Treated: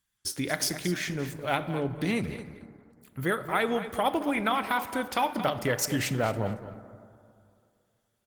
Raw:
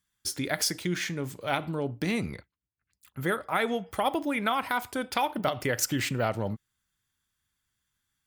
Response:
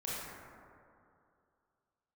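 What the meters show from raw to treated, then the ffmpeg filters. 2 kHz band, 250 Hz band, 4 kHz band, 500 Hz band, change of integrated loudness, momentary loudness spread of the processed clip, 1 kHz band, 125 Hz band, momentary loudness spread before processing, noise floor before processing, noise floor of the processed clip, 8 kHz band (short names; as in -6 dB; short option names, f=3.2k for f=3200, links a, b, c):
+0.5 dB, +1.0 dB, -1.0 dB, +1.0 dB, +0.5 dB, 11 LU, +1.0 dB, +1.0 dB, 7 LU, -84 dBFS, -76 dBFS, -1.0 dB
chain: -filter_complex "[0:a]aecho=1:1:225|450:0.237|0.0356,asplit=2[a][b];[1:a]atrim=start_sample=2205[c];[b][c]afir=irnorm=-1:irlink=0,volume=-14.5dB[d];[a][d]amix=inputs=2:normalize=0" -ar 48000 -c:a libopus -b:a 20k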